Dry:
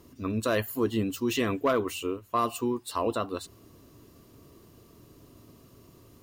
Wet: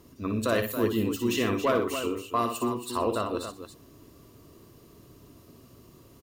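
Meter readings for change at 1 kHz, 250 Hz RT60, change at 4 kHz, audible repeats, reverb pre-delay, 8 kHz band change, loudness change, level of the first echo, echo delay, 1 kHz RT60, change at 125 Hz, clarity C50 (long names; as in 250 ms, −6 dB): +1.0 dB, no reverb audible, +1.5 dB, 3, no reverb audible, +1.5 dB, +1.0 dB, −6.5 dB, 59 ms, no reverb audible, +1.0 dB, no reverb audible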